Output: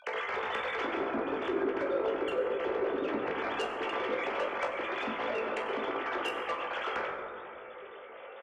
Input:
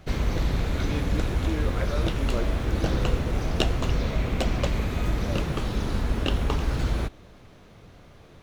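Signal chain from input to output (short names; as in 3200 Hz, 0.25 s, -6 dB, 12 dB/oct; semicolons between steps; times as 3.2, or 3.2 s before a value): sine-wave speech; compressor 8:1, threshold -28 dBFS, peak gain reduction 17.5 dB; low shelf 420 Hz -6 dB; doubler 18 ms -6 dB; added harmonics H 3 -13 dB, 5 -17 dB, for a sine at -18.5 dBFS; 0.94–3.08 tilt shelf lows +5.5 dB, about 680 Hz; reverb RT60 2.6 s, pre-delay 6 ms, DRR -1 dB; gain -3 dB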